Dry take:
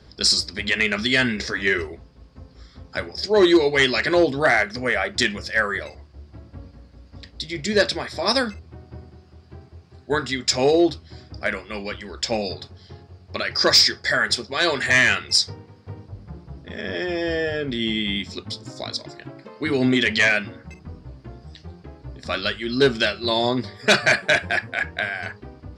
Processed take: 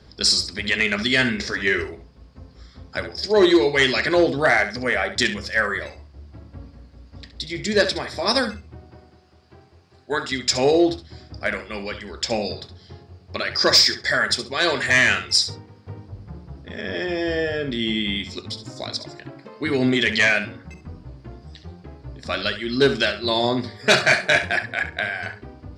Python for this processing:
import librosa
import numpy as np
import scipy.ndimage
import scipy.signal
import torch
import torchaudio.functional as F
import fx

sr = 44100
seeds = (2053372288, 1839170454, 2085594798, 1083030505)

y = fx.low_shelf(x, sr, hz=250.0, db=-11.0, at=(8.9, 10.32))
y = fx.doubler(y, sr, ms=22.0, db=-7.0, at=(23.82, 24.43))
y = fx.echo_feedback(y, sr, ms=68, feedback_pct=16, wet_db=-11.5)